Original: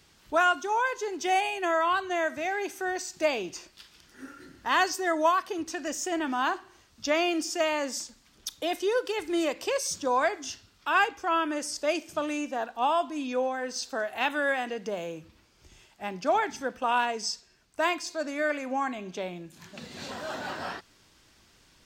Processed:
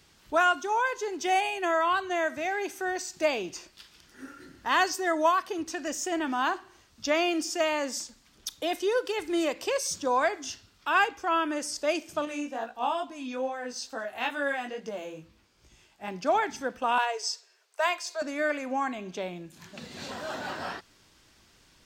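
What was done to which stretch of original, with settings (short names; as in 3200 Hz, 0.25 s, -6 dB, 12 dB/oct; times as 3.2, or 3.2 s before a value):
12.25–16.08 chorus 2.3 Hz, delay 17.5 ms, depth 3.6 ms
16.98–18.22 steep high-pass 390 Hz 72 dB/oct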